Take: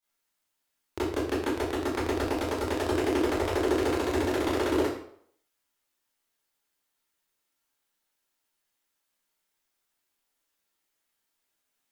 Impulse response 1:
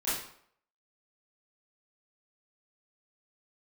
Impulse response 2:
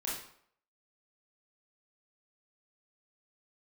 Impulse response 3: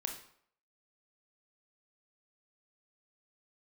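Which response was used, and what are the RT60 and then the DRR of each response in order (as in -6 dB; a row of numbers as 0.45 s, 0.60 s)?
1; 0.65 s, 0.65 s, 0.65 s; -13.0 dB, -6.0 dB, 3.0 dB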